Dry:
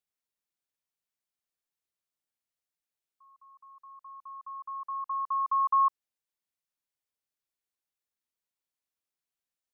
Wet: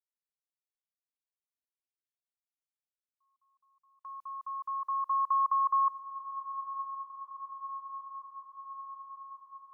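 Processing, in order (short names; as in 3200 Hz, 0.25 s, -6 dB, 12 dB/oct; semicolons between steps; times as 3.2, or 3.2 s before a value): gate with hold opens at -44 dBFS; in parallel at +0.5 dB: negative-ratio compressor -29 dBFS, ratio -0.5; on the sum: diffused feedback echo 0.943 s, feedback 70%, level -11.5 dB; gain -5 dB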